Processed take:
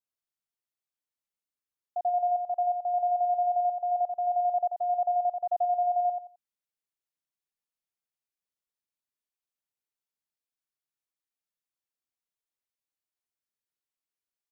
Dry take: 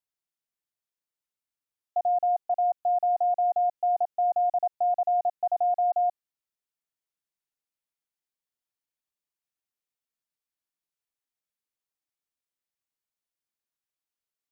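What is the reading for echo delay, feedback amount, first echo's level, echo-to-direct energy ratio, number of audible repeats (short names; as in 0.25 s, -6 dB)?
87 ms, 25%, -4.5 dB, -4.0 dB, 3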